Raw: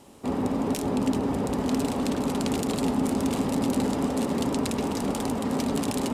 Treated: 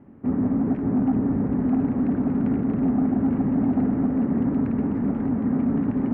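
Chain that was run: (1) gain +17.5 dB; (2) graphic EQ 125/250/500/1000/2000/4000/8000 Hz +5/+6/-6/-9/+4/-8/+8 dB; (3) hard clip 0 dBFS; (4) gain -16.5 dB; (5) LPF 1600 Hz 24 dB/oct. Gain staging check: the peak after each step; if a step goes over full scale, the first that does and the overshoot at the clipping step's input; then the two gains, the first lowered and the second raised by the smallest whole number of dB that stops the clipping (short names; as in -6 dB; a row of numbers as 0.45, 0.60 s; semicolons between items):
+6.5, +9.5, 0.0, -16.5, -16.0 dBFS; step 1, 9.5 dB; step 1 +7.5 dB, step 4 -6.5 dB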